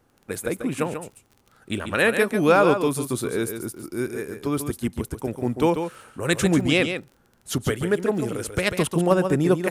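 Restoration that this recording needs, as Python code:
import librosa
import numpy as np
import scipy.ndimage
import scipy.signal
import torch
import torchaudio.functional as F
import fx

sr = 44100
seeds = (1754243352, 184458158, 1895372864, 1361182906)

y = fx.fix_declip(x, sr, threshold_db=-7.0)
y = fx.fix_declick_ar(y, sr, threshold=6.5)
y = fx.fix_echo_inverse(y, sr, delay_ms=141, level_db=-8.0)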